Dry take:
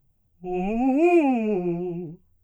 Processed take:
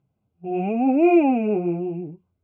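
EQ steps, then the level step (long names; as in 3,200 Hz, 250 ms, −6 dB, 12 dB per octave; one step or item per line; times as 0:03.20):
band-pass filter 140–2,500 Hz
Butterworth band-reject 1,800 Hz, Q 5.3
+2.5 dB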